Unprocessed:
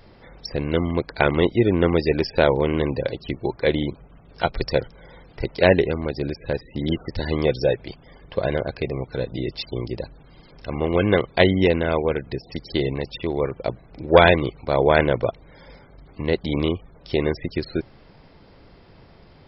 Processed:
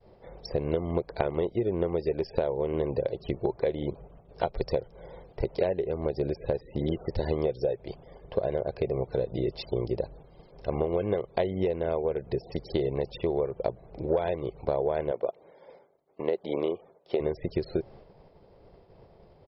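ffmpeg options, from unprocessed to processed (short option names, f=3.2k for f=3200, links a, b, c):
-filter_complex "[0:a]asettb=1/sr,asplit=3[a][b][c];[a]atrim=end=15.114[d];[b]atrim=start=15.11:end=17.2,asetpts=PTS-STARTPTS,afade=t=in:d=0.004:c=qsin,afade=t=out:st=2.086:d=0.004:c=qsin,highpass=300,lowpass=3.8k[e];[c]atrim=start=17.196[f];[d][e]acrossfade=d=0.004:c1=hsin:c2=qsin[g];[g][f]acrossfade=d=0.004:c1=qsin:c2=hsin,agate=range=-33dB:threshold=-43dB:ratio=3:detection=peak,firequalizer=gain_entry='entry(190,0);entry(270,-5);entry(390,6);entry(610,6);entry(1400,-7)':delay=0.05:min_phase=1,acompressor=threshold=-22dB:ratio=12,volume=-1.5dB"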